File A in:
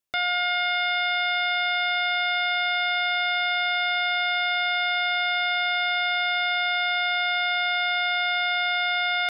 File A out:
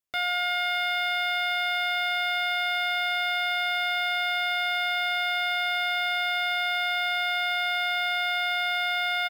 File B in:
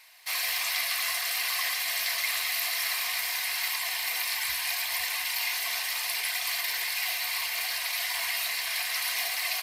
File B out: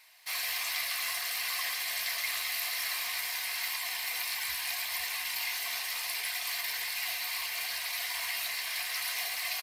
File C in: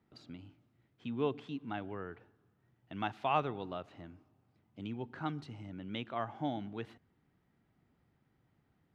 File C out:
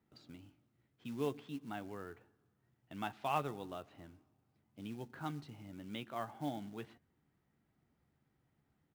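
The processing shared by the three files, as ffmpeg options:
-filter_complex "[0:a]acrusher=bits=5:mode=log:mix=0:aa=0.000001,asplit=2[s0][s1];[s1]adelay=14,volume=0.266[s2];[s0][s2]amix=inputs=2:normalize=0,volume=0.596"

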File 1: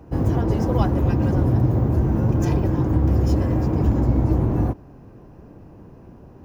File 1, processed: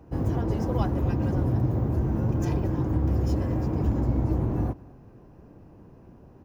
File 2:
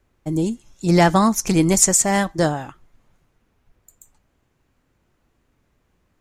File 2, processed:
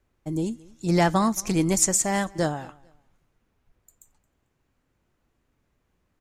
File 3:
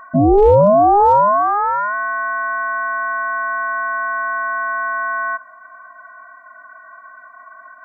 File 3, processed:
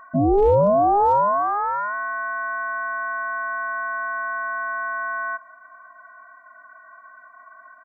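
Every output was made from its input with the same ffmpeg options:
-af "aecho=1:1:222|444:0.0631|0.017,volume=0.501"

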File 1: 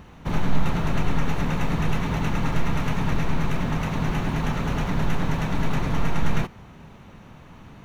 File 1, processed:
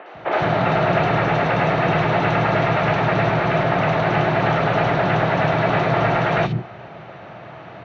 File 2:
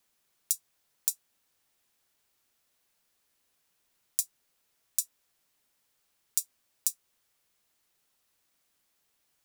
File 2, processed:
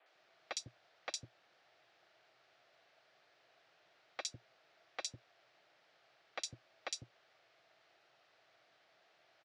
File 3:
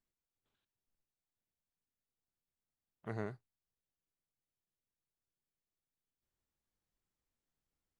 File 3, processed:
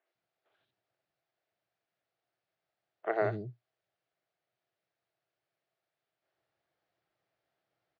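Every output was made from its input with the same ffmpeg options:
-filter_complex "[0:a]asplit=2[s0][s1];[s1]highpass=f=720:p=1,volume=8.91,asoftclip=type=tanh:threshold=0.891[s2];[s0][s2]amix=inputs=2:normalize=0,lowpass=f=1900:p=1,volume=0.501,highpass=100,equalizer=f=120:t=q:w=4:g=8,equalizer=f=240:t=q:w=4:g=-8,equalizer=f=340:t=q:w=4:g=5,equalizer=f=660:t=q:w=4:g=9,equalizer=f=1000:t=q:w=4:g=-7,lowpass=f=4700:w=0.5412,lowpass=f=4700:w=1.3066,acrossover=split=310|3100[s3][s4][s5];[s5]adelay=60[s6];[s3]adelay=150[s7];[s7][s4][s6]amix=inputs=3:normalize=0,volume=1.33"

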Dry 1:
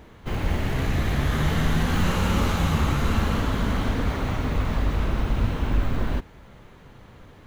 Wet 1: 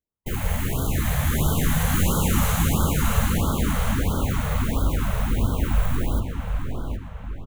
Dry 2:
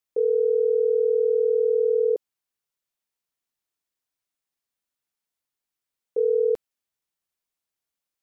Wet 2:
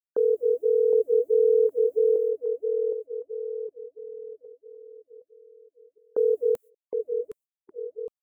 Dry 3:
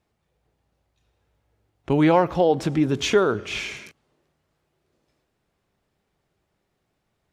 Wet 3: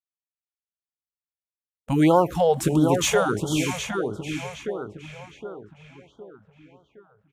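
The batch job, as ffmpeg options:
-filter_complex "[0:a]agate=range=0.00447:threshold=0.0112:ratio=16:detection=peak,asplit=2[s0][s1];[s1]adelay=764,lowpass=f=3600:p=1,volume=0.562,asplit=2[s2][s3];[s3]adelay=764,lowpass=f=3600:p=1,volume=0.46,asplit=2[s4][s5];[s5]adelay=764,lowpass=f=3600:p=1,volume=0.46,asplit=2[s6][s7];[s7]adelay=764,lowpass=f=3600:p=1,volume=0.46,asplit=2[s8][s9];[s9]adelay=764,lowpass=f=3600:p=1,volume=0.46,asplit=2[s10][s11];[s11]adelay=764,lowpass=f=3600:p=1,volume=0.46[s12];[s2][s4][s6][s8][s10][s12]amix=inputs=6:normalize=0[s13];[s0][s13]amix=inputs=2:normalize=0,aexciter=amount=3:drive=9:freq=6900,afftfilt=real='re*(1-between(b*sr/1024,280*pow(2200/280,0.5+0.5*sin(2*PI*1.5*pts/sr))/1.41,280*pow(2200/280,0.5+0.5*sin(2*PI*1.5*pts/sr))*1.41))':imag='im*(1-between(b*sr/1024,280*pow(2200/280,0.5+0.5*sin(2*PI*1.5*pts/sr))/1.41,280*pow(2200/280,0.5+0.5*sin(2*PI*1.5*pts/sr))*1.41))':win_size=1024:overlap=0.75"

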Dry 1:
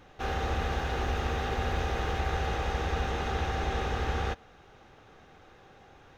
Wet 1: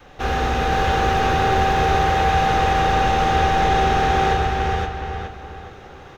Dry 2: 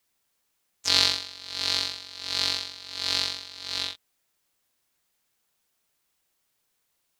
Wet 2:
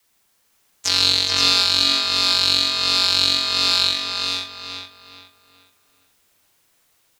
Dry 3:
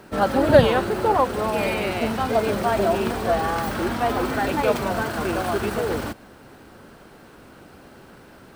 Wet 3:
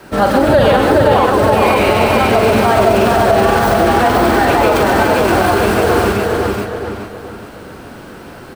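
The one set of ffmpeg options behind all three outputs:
-filter_complex "[0:a]asplit=2[s0][s1];[s1]adelay=420,lowpass=f=3500:p=1,volume=0.596,asplit=2[s2][s3];[s3]adelay=420,lowpass=f=3500:p=1,volume=0.37,asplit=2[s4][s5];[s5]adelay=420,lowpass=f=3500:p=1,volume=0.37,asplit=2[s6][s7];[s7]adelay=420,lowpass=f=3500:p=1,volume=0.37,asplit=2[s8][s9];[s9]adelay=420,lowpass=f=3500:p=1,volume=0.37[s10];[s2][s4][s6][s8][s10]amix=inputs=5:normalize=0[s11];[s0][s11]amix=inputs=2:normalize=0,adynamicequalizer=threshold=0.0178:dfrequency=180:dqfactor=1.5:tfrequency=180:tqfactor=1.5:attack=5:release=100:ratio=0.375:range=1.5:mode=cutabove:tftype=bell,asplit=2[s12][s13];[s13]aecho=0:1:44|130|514|524:0.422|0.501|0.398|0.501[s14];[s12][s14]amix=inputs=2:normalize=0,alimiter=level_in=3.16:limit=0.891:release=50:level=0:latency=1,volume=0.891"

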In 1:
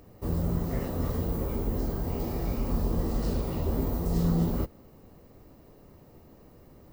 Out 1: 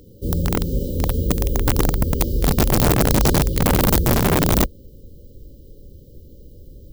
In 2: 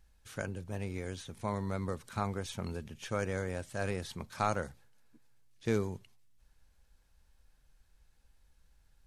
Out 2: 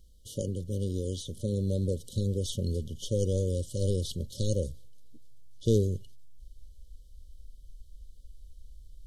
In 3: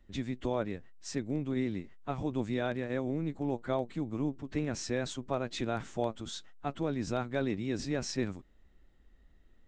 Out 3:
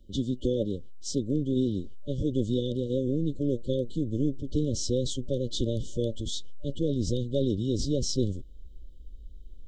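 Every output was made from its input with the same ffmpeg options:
-af "afftfilt=real='re*(1-between(b*sr/4096,590,2900))':imag='im*(1-between(b*sr/4096,590,2900))':win_size=4096:overlap=0.75,asubboost=boost=3.5:cutoff=93,aeval=exprs='(mod(7.94*val(0)+1,2)-1)/7.94':c=same,volume=2.24"

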